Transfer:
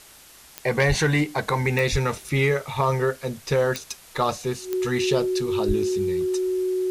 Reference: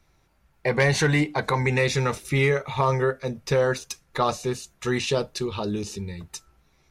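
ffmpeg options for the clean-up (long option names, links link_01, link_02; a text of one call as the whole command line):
ffmpeg -i in.wav -filter_complex "[0:a]adeclick=threshold=4,bandreject=frequency=370:width=30,asplit=3[link_01][link_02][link_03];[link_01]afade=type=out:start_time=0.88:duration=0.02[link_04];[link_02]highpass=frequency=140:width=0.5412,highpass=frequency=140:width=1.3066,afade=type=in:start_time=0.88:duration=0.02,afade=type=out:start_time=1:duration=0.02[link_05];[link_03]afade=type=in:start_time=1:duration=0.02[link_06];[link_04][link_05][link_06]amix=inputs=3:normalize=0,asplit=3[link_07][link_08][link_09];[link_07]afade=type=out:start_time=1.91:duration=0.02[link_10];[link_08]highpass=frequency=140:width=0.5412,highpass=frequency=140:width=1.3066,afade=type=in:start_time=1.91:duration=0.02,afade=type=out:start_time=2.03:duration=0.02[link_11];[link_09]afade=type=in:start_time=2.03:duration=0.02[link_12];[link_10][link_11][link_12]amix=inputs=3:normalize=0,asplit=3[link_13][link_14][link_15];[link_13]afade=type=out:start_time=5.67:duration=0.02[link_16];[link_14]highpass=frequency=140:width=0.5412,highpass=frequency=140:width=1.3066,afade=type=in:start_time=5.67:duration=0.02,afade=type=out:start_time=5.79:duration=0.02[link_17];[link_15]afade=type=in:start_time=5.79:duration=0.02[link_18];[link_16][link_17][link_18]amix=inputs=3:normalize=0,afftdn=noise_reduction=14:noise_floor=-49" out.wav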